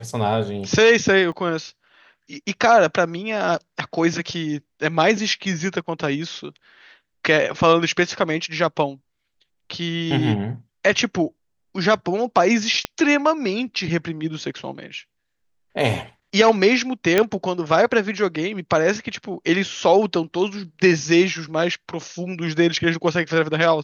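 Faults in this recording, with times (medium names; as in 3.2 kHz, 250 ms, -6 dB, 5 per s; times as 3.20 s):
1.32 s: dropout 3.2 ms
12.85 s: pop -7 dBFS
17.18 s: pop -3 dBFS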